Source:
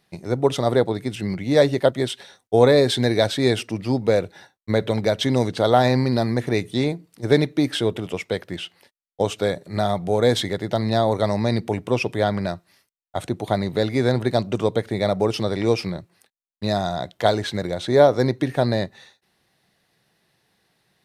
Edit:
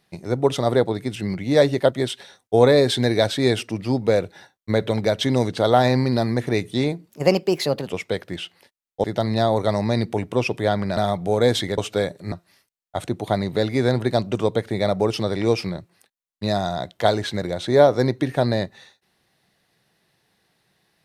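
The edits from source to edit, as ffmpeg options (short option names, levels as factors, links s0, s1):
-filter_complex "[0:a]asplit=7[s0][s1][s2][s3][s4][s5][s6];[s0]atrim=end=7.094[s7];[s1]atrim=start=7.09:end=8.07,asetpts=PTS-STARTPTS,asetrate=55566,aresample=44100[s8];[s2]atrim=start=8.066:end=9.242[s9];[s3]atrim=start=10.588:end=12.522[s10];[s4]atrim=start=9.778:end=10.592[s11];[s5]atrim=start=9.238:end=9.782[s12];[s6]atrim=start=12.518[s13];[s7][s8]acrossfade=d=0.004:c1=hsin:c2=hsin[s14];[s14][s9]acrossfade=d=0.004:c1=hsin:c2=hsin[s15];[s15][s10]acrossfade=d=0.004:c1=hsin:c2=hsin[s16];[s16][s11]acrossfade=d=0.004:c1=hsin:c2=hsin[s17];[s17][s12]acrossfade=d=0.004:c1=hsin:c2=hsin[s18];[s18][s13]acrossfade=d=0.004:c1=hsin:c2=hsin"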